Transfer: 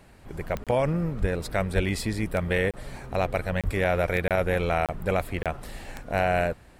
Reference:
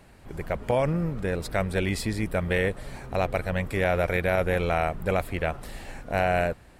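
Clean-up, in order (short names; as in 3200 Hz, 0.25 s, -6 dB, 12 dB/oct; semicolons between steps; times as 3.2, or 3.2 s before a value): de-click; 1.2–1.32 HPF 140 Hz 24 dB/oct; 1.75–1.87 HPF 140 Hz 24 dB/oct; 3.64–3.76 HPF 140 Hz 24 dB/oct; interpolate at 0.64/2.71/3.61/4.28/4.86/5.43, 27 ms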